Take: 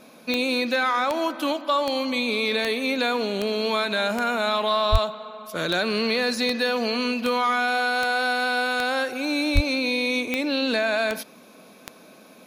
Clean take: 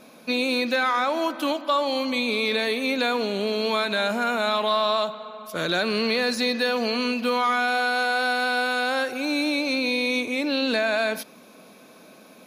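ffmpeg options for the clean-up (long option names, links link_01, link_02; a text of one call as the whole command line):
ffmpeg -i in.wav -filter_complex "[0:a]adeclick=threshold=4,asplit=3[link_01][link_02][link_03];[link_01]afade=type=out:start_time=4.91:duration=0.02[link_04];[link_02]highpass=frequency=140:width=0.5412,highpass=frequency=140:width=1.3066,afade=type=in:start_time=4.91:duration=0.02,afade=type=out:start_time=5.03:duration=0.02[link_05];[link_03]afade=type=in:start_time=5.03:duration=0.02[link_06];[link_04][link_05][link_06]amix=inputs=3:normalize=0,asplit=3[link_07][link_08][link_09];[link_07]afade=type=out:start_time=9.54:duration=0.02[link_10];[link_08]highpass=frequency=140:width=0.5412,highpass=frequency=140:width=1.3066,afade=type=in:start_time=9.54:duration=0.02,afade=type=out:start_time=9.66:duration=0.02[link_11];[link_09]afade=type=in:start_time=9.66:duration=0.02[link_12];[link_10][link_11][link_12]amix=inputs=3:normalize=0" out.wav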